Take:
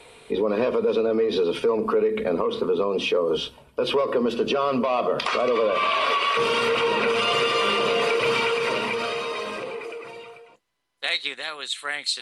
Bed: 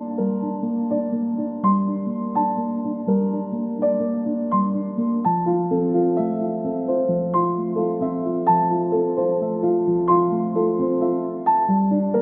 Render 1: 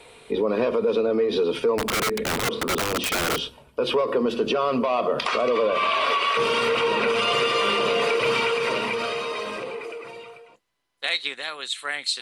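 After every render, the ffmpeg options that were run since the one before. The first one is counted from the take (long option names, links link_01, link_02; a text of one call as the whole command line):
ffmpeg -i in.wav -filter_complex "[0:a]asettb=1/sr,asplit=3[link_01][link_02][link_03];[link_01]atrim=end=1.784[link_04];[link_02]atrim=start=1.78:end=3.4,asetpts=PTS-STARTPTS,afade=type=in:duration=0.004:curve=qsin,afade=type=out:start_time=1.616:duration=0.004:curve=qsin,aeval=exprs='(mod(8.91*val(0)+1,2)-1)/8.91':channel_layout=same[link_05];[link_03]atrim=start=3.396[link_06];[link_04][link_05]acrossfade=duration=0.004:curve1=hsin:curve2=qsin[link_07];[link_07][link_06]acrossfade=duration=0.004:curve1=qsin:curve2=hsin" out.wav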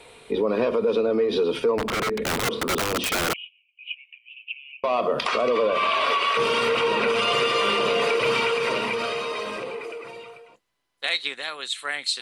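ffmpeg -i in.wav -filter_complex "[0:a]asettb=1/sr,asplit=3[link_01][link_02][link_03];[link_01]atrim=end=1.714[link_04];[link_02]atrim=start=1.71:end=2.22,asetpts=PTS-STARTPTS,afade=type=in:duration=0.004:curve=qsin,afade=type=out:start_time=0.506:duration=0.004:curve=qsin,lowpass=frequency=3000:poles=1[link_05];[link_03]atrim=start=2.216[link_06];[link_04][link_05]acrossfade=duration=0.004:curve1=hsin:curve2=qsin[link_07];[link_07][link_06]acrossfade=duration=0.004:curve1=qsin:curve2=hsin,asettb=1/sr,asplit=3[link_08][link_09][link_10];[link_08]atrim=end=3.334[link_11];[link_09]atrim=start=3.33:end=4.84,asetpts=PTS-STARTPTS,afade=type=in:duration=0.004:curve=qsin,afade=type=out:start_time=1.506:duration=0.004:curve=qsin,asuperpass=centerf=2600:order=8:qfactor=3.7[link_12];[link_10]atrim=start=4.836[link_13];[link_11][link_12]acrossfade=duration=0.004:curve1=hsin:curve2=qsin[link_14];[link_14][link_13]acrossfade=duration=0.004:curve1=qsin:curve2=hsin" out.wav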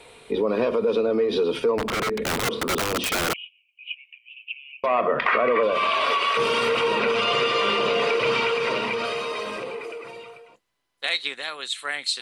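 ffmpeg -i in.wav -filter_complex "[0:a]asettb=1/sr,asplit=3[link_01][link_02][link_03];[link_01]atrim=end=4.864[link_04];[link_02]atrim=start=4.86:end=5.63,asetpts=PTS-STARTPTS,afade=type=in:duration=0.004:curve=qsin,afade=type=out:start_time=0.766:duration=0.004:curve=qsin,lowpass=frequency=1900:width_type=q:width=3.5[link_05];[link_03]atrim=start=5.626[link_06];[link_04][link_05]acrossfade=duration=0.004:curve1=hsin:curve2=qsin[link_07];[link_07][link_06]acrossfade=duration=0.004:curve1=qsin:curve2=hsin,asettb=1/sr,asplit=3[link_08][link_09][link_10];[link_08]atrim=end=6.994[link_11];[link_09]atrim=start=6.99:end=9.05,asetpts=PTS-STARTPTS,afade=type=in:duration=0.004:curve=qsin,afade=type=out:start_time=2.056:duration=0.004:curve=qsin,acrossover=split=6900[link_12][link_13];[link_13]acompressor=threshold=-60dB:ratio=4:attack=1:release=60[link_14];[link_12][link_14]amix=inputs=2:normalize=0[link_15];[link_10]atrim=start=9.046[link_16];[link_11][link_15]acrossfade=duration=0.004:curve1=hsin:curve2=qsin[link_17];[link_17][link_16]acrossfade=duration=0.004:curve1=qsin:curve2=hsin" out.wav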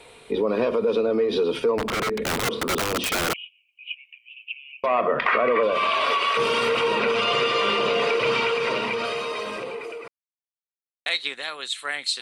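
ffmpeg -i in.wav -filter_complex "[0:a]asplit=3[link_01][link_02][link_03];[link_01]atrim=end=10.08,asetpts=PTS-STARTPTS,afade=type=out:start_time=10.076:duration=0.004:curve=hsin[link_04];[link_02]atrim=start=10.08:end=11.06,asetpts=PTS-STARTPTS,volume=0[link_05];[link_03]atrim=start=11.06,asetpts=PTS-STARTPTS,afade=type=in:duration=0.004:curve=hsin[link_06];[link_04][link_05][link_06]concat=n=3:v=0:a=1" out.wav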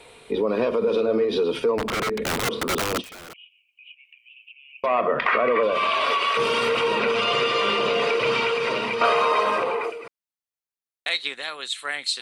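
ffmpeg -i in.wav -filter_complex "[0:a]asettb=1/sr,asplit=3[link_01][link_02][link_03];[link_01]atrim=end=0.774[link_04];[link_02]atrim=start=0.77:end=1.25,asetpts=PTS-STARTPTS,afade=type=in:duration=0.004:curve=qsin,afade=type=out:start_time=0.476:duration=0.004:curve=qsin,asplit=2[link_05][link_06];[link_06]adelay=46,volume=-8dB[link_07];[link_05][link_07]amix=inputs=2:normalize=0,atrim=end_sample=21168[link_08];[link_03]atrim=start=1.246[link_09];[link_04][link_08]acrossfade=duration=0.004:curve1=hsin:curve2=qsin[link_10];[link_10][link_09]acrossfade=duration=0.004:curve1=qsin:curve2=hsin,asplit=3[link_11][link_12][link_13];[link_11]afade=type=out:start_time=3:duration=0.02[link_14];[link_12]acompressor=threshold=-46dB:ratio=3:attack=3.2:release=140:knee=1:detection=peak,afade=type=in:start_time=3:duration=0.02,afade=type=out:start_time=4.74:duration=0.02[link_15];[link_13]afade=type=in:start_time=4.74:duration=0.02[link_16];[link_14][link_15][link_16]amix=inputs=3:normalize=0,asettb=1/sr,asplit=3[link_17][link_18][link_19];[link_17]atrim=end=9.014[link_20];[link_18]atrim=start=9.01:end=9.9,asetpts=PTS-STARTPTS,afade=type=in:duration=0.004:curve=qsin,afade=type=out:start_time=0.886:duration=0.004:curve=qsin,equalizer=frequency=980:width_type=o:width=2.1:gain=13.5[link_21];[link_19]atrim=start=9.896[link_22];[link_20][link_21]acrossfade=duration=0.004:curve1=hsin:curve2=qsin[link_23];[link_23][link_22]acrossfade=duration=0.004:curve1=qsin:curve2=hsin" out.wav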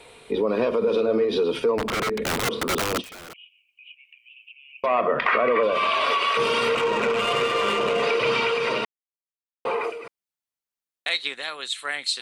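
ffmpeg -i in.wav -filter_complex "[0:a]asettb=1/sr,asplit=3[link_01][link_02][link_03];[link_01]atrim=end=6.754[link_04];[link_02]atrim=start=6.75:end=8.03,asetpts=PTS-STARTPTS,afade=type=in:duration=0.004:curve=qsin,afade=type=out:start_time=1.276:duration=0.004:curve=qsin,adynamicsmooth=sensitivity=1.5:basefreq=1600[link_05];[link_03]atrim=start=8.026[link_06];[link_04][link_05]acrossfade=duration=0.004:curve1=hsin:curve2=qsin[link_07];[link_07][link_06]acrossfade=duration=0.004:curve1=qsin:curve2=hsin,asplit=3[link_08][link_09][link_10];[link_08]atrim=end=8.85,asetpts=PTS-STARTPTS,afade=type=out:start_time=8.846:duration=0.004:curve=hsin[link_11];[link_09]atrim=start=8.85:end=9.65,asetpts=PTS-STARTPTS,volume=0[link_12];[link_10]atrim=start=9.65,asetpts=PTS-STARTPTS,afade=type=in:duration=0.004:curve=hsin[link_13];[link_11][link_12][link_13]concat=n=3:v=0:a=1" out.wav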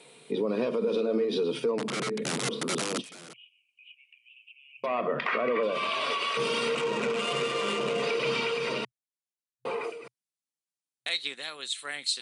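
ffmpeg -i in.wav -af "afftfilt=real='re*between(b*sr/4096,120,11000)':imag='im*between(b*sr/4096,120,11000)':win_size=4096:overlap=0.75,equalizer=frequency=1100:width=0.35:gain=-9" out.wav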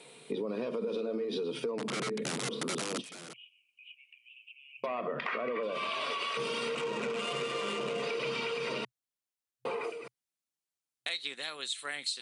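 ffmpeg -i in.wav -af "acompressor=threshold=-32dB:ratio=4" out.wav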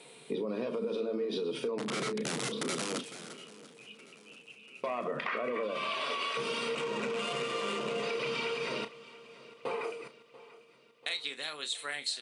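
ffmpeg -i in.wav -filter_complex "[0:a]asplit=2[link_01][link_02];[link_02]adelay=33,volume=-10.5dB[link_03];[link_01][link_03]amix=inputs=2:normalize=0,aecho=1:1:688|1376|2064|2752|3440:0.112|0.0628|0.0352|0.0197|0.011" out.wav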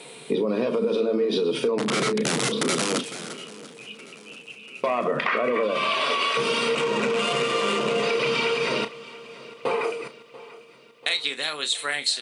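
ffmpeg -i in.wav -af "volume=10.5dB" out.wav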